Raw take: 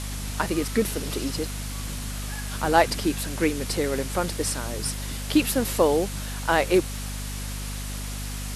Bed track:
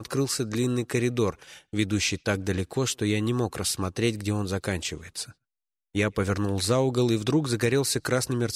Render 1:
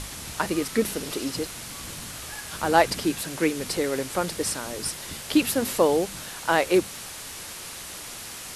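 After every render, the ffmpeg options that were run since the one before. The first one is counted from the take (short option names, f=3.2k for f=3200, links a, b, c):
-af "bandreject=f=50:t=h:w=6,bandreject=f=100:t=h:w=6,bandreject=f=150:t=h:w=6,bandreject=f=200:t=h:w=6,bandreject=f=250:t=h:w=6"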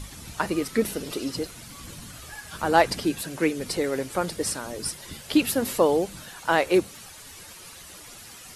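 -af "afftdn=nr=10:nf=-39"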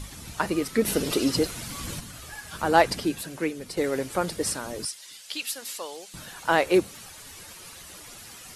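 -filter_complex "[0:a]asplit=3[a][b][c];[a]afade=t=out:st=0.86:d=0.02[d];[b]acontrast=65,afade=t=in:st=0.86:d=0.02,afade=t=out:st=1.99:d=0.02[e];[c]afade=t=in:st=1.99:d=0.02[f];[d][e][f]amix=inputs=3:normalize=0,asettb=1/sr,asplit=3[g][h][i];[g]atrim=end=4.854[j];[h]atrim=start=4.85:end=6.14,asetpts=PTS-STARTPTS,afade=t=in:d=0.004:c=qsin,afade=t=out:st=1.286:d=0.004:c=qsin,bandpass=f=5.6k:t=q:w=0.71[k];[i]atrim=start=6.136[l];[j][k]acrossfade=d=0.004:c1=hsin:c2=qsin[m];[m][l]acrossfade=d=0.004:c1=qsin:c2=hsin,asplit=2[n][o];[n]atrim=end=3.77,asetpts=PTS-STARTPTS,afade=t=out:st=2.85:d=0.92:silence=0.375837[p];[o]atrim=start=3.77,asetpts=PTS-STARTPTS,afade=t=in:d=0.004:c=hsin:silence=0.375837[q];[p][q]concat=n=2:v=0:a=1"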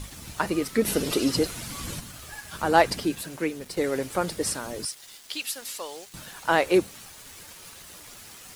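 -af "aeval=exprs='val(0)*gte(abs(val(0)),0.00631)':c=same"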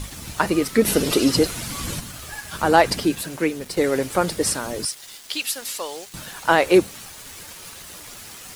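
-af "volume=6dB,alimiter=limit=-3dB:level=0:latency=1"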